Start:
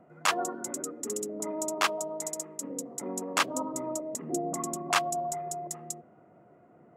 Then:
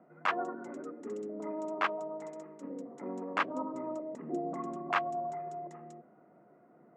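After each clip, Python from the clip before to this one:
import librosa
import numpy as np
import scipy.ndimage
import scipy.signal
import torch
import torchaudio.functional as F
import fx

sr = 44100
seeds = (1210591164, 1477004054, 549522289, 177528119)

y = scipy.signal.sosfilt(scipy.signal.cheby1(2, 1.0, [190.0, 1900.0], 'bandpass', fs=sr, output='sos'), x)
y = y * librosa.db_to_amplitude(-2.5)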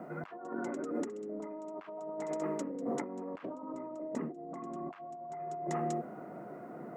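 y = fx.over_compress(x, sr, threshold_db=-48.0, ratio=-1.0)
y = y * librosa.db_to_amplitude(7.0)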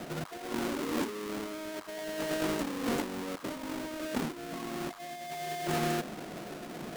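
y = fx.halfwave_hold(x, sr)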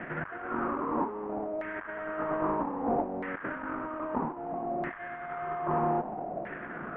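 y = fx.cvsd(x, sr, bps=16000)
y = fx.filter_lfo_lowpass(y, sr, shape='saw_down', hz=0.62, low_hz=650.0, high_hz=1900.0, q=4.7)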